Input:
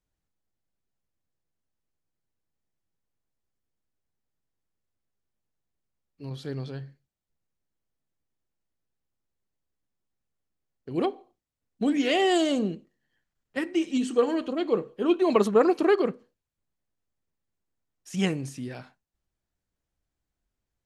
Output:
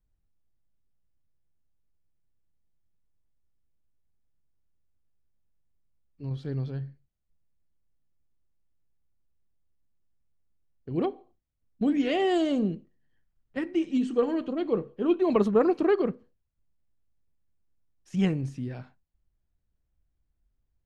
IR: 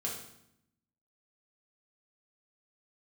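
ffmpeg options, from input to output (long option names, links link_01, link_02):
-af "aemphasis=mode=reproduction:type=bsi,volume=-4dB"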